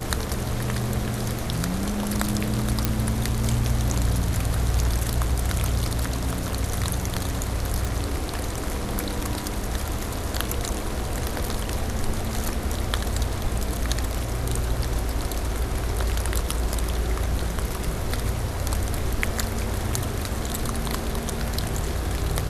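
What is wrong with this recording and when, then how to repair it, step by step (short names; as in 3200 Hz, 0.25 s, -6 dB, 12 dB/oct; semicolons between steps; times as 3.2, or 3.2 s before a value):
2.85 pop
7.85 pop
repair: de-click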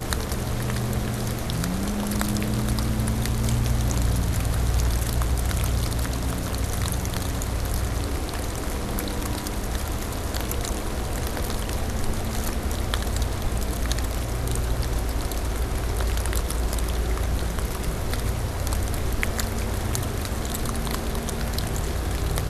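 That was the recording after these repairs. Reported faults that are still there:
none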